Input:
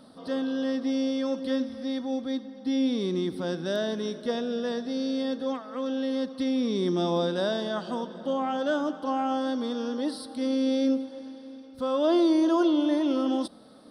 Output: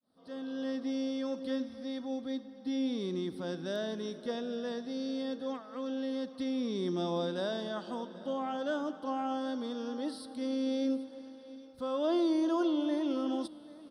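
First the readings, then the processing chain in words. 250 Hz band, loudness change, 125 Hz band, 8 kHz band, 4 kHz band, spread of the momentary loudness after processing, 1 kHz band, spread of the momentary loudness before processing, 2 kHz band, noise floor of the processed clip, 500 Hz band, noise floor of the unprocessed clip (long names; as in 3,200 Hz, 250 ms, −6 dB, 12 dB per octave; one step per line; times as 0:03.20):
−7.0 dB, −7.0 dB, −7.0 dB, −7.0 dB, −7.0 dB, 9 LU, −7.0 dB, 9 LU, −7.0 dB, −51 dBFS, −7.0 dB, −47 dBFS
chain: fade in at the beginning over 0.67 s
single-tap delay 785 ms −20 dB
level −7 dB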